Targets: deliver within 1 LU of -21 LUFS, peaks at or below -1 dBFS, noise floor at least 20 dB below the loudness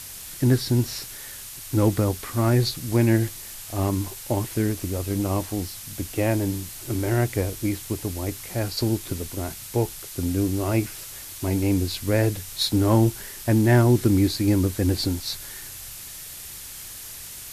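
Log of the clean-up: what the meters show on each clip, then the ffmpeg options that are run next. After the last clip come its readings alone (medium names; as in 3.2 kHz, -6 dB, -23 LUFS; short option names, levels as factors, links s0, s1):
noise floor -39 dBFS; noise floor target -44 dBFS; loudness -24.0 LUFS; peak level -7.0 dBFS; loudness target -21.0 LUFS
-> -af "afftdn=nr=6:nf=-39"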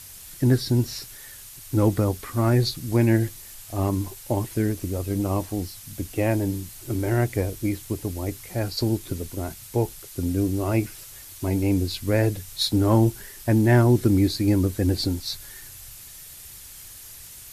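noise floor -43 dBFS; noise floor target -44 dBFS
-> -af "afftdn=nr=6:nf=-43"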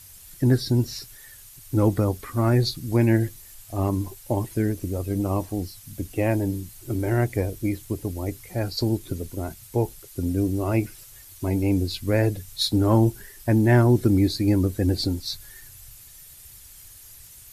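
noise floor -47 dBFS; loudness -24.5 LUFS; peak level -7.0 dBFS; loudness target -21.0 LUFS
-> -af "volume=1.5"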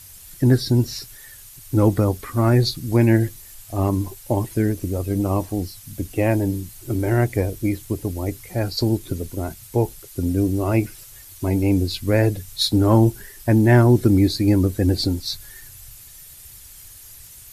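loudness -20.5 LUFS; peak level -3.5 dBFS; noise floor -43 dBFS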